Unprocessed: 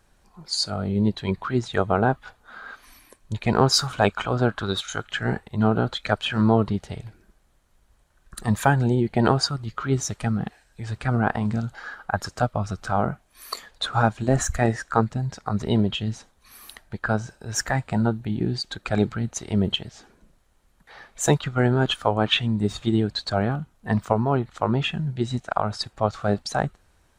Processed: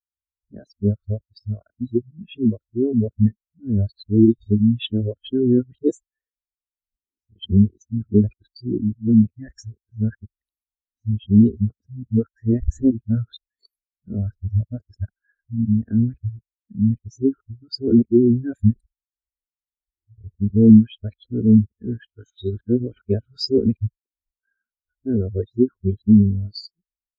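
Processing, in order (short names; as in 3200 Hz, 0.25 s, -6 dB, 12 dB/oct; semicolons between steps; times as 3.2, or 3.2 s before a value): whole clip reversed; bell 110 Hz +12 dB 2.4 oct; notch 1200 Hz, Q 6.8; in parallel at +3 dB: limiter -9.5 dBFS, peak gain reduction 8 dB; on the sum: fixed phaser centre 350 Hz, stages 4; spectral expander 2.5:1; gain -1.5 dB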